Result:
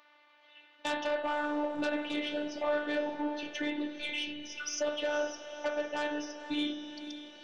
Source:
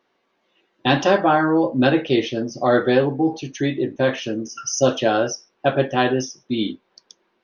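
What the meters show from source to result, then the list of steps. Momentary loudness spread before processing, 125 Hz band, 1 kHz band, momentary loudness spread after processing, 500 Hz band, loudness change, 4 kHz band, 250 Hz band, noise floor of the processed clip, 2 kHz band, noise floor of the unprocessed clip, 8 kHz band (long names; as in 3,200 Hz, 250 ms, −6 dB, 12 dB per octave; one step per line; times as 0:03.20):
9 LU, −34.0 dB, −15.0 dB, 6 LU, −14.5 dB, −14.0 dB, −9.5 dB, −15.0 dB, −63 dBFS, −10.5 dB, −69 dBFS, can't be measured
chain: gain on a spectral selection 0:03.89–0:04.60, 230–2,000 Hz −29 dB
three-way crossover with the lows and the highs turned down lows −16 dB, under 450 Hz, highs −22 dB, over 4,000 Hz
downward compressor 3 to 1, threshold −33 dBFS, peak gain reduction 14 dB
pitch vibrato 10 Hz 22 cents
sine wavefolder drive 6 dB, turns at −18 dBFS
feedback delay with all-pass diffusion 511 ms, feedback 45%, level −14 dB
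phases set to zero 296 Hz
spring reverb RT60 2.3 s, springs 57 ms, chirp 40 ms, DRR 7 dB
one half of a high-frequency compander encoder only
level −6.5 dB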